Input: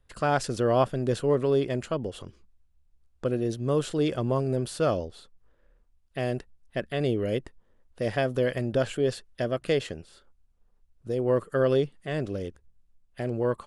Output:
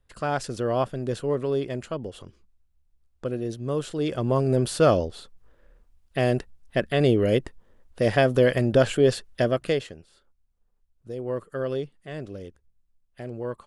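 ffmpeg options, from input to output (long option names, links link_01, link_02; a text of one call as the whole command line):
ffmpeg -i in.wav -af "volume=6.5dB,afade=type=in:start_time=3.99:duration=0.68:silence=0.375837,afade=type=out:start_time=9.41:duration=0.49:silence=0.251189" out.wav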